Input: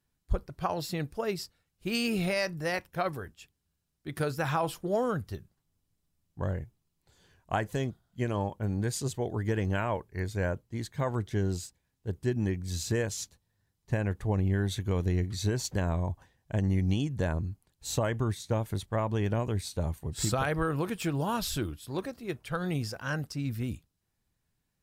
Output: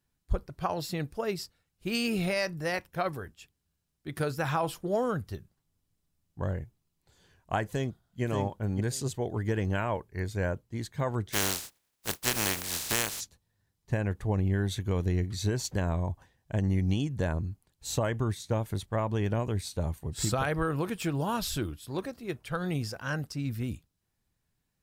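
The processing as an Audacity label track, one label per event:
7.680000	8.220000	echo throw 580 ms, feedback 15%, level -5 dB
11.320000	13.190000	spectral contrast reduction exponent 0.23

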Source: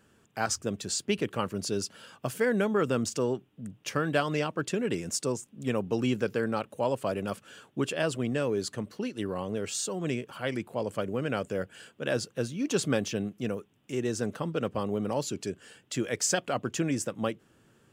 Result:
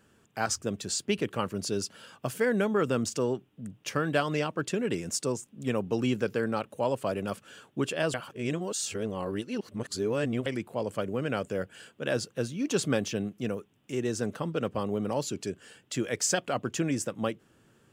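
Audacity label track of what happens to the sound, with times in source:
8.140000	10.460000	reverse

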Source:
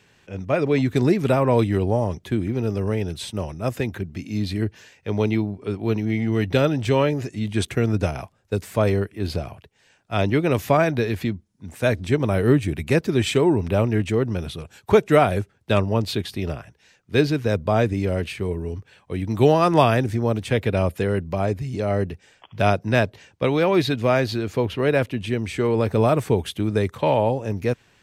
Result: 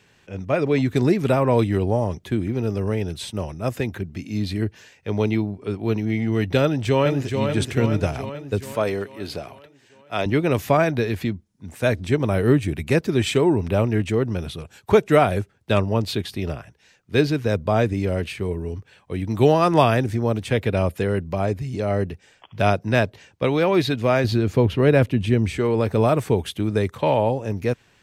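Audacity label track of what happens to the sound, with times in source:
6.620000	7.430000	echo throw 430 ms, feedback 60%, level -5.5 dB
8.750000	10.260000	high-pass 370 Hz 6 dB/octave
24.240000	25.580000	bass shelf 330 Hz +8.5 dB

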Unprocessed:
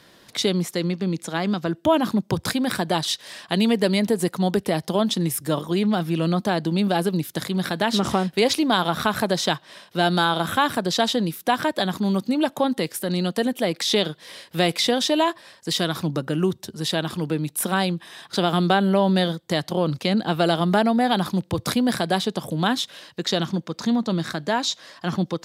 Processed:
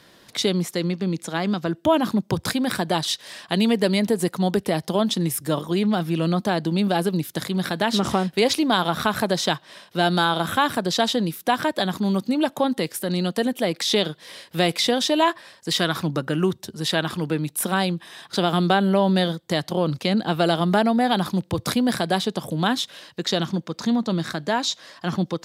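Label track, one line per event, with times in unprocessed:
15.220000	17.490000	dynamic bell 1.6 kHz, up to +5 dB, over -36 dBFS, Q 0.8

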